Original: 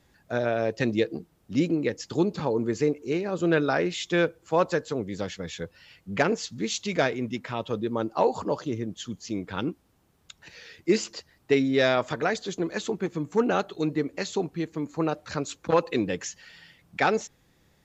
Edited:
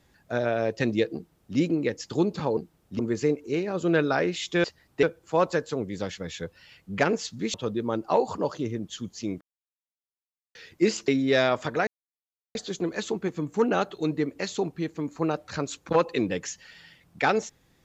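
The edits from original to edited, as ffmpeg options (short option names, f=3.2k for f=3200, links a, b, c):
-filter_complex "[0:a]asplit=10[a][b][c][d][e][f][g][h][i][j];[a]atrim=end=2.572[k];[b]atrim=start=1.148:end=1.572[l];[c]atrim=start=2.568:end=4.222[m];[d]atrim=start=11.148:end=11.542[n];[e]atrim=start=4.218:end=6.732[o];[f]atrim=start=7.608:end=9.48,asetpts=PTS-STARTPTS,afade=t=out:st=1.868:d=0.004:c=hsin[p];[g]atrim=start=9.48:end=10.62,asetpts=PTS-STARTPTS,volume=0[q];[h]atrim=start=10.62:end=11.152,asetpts=PTS-STARTPTS,afade=t=in:d=0.004:c=hsin[r];[i]atrim=start=11.538:end=12.33,asetpts=PTS-STARTPTS,afade=t=out:st=0.788:d=0.004:c=hsin,apad=pad_dur=0.68[s];[j]atrim=start=12.33,asetpts=PTS-STARTPTS,afade=t=in:d=0.004:c=hsin[t];[k][l]acrossfade=d=0.004:c1=hsin:c2=hsin[u];[u][m]acrossfade=d=0.004:c1=hsin:c2=hsin[v];[v][n]acrossfade=d=0.004:c1=hsin:c2=hsin[w];[w][o]acrossfade=d=0.004:c1=hsin:c2=hsin[x];[p][q][r]concat=n=3:v=0:a=1[y];[x][y]acrossfade=d=0.004:c1=hsin:c2=hsin[z];[s][t]concat=n=2:v=0:a=1[aa];[z][aa]acrossfade=d=0.004:c1=hsin:c2=hsin"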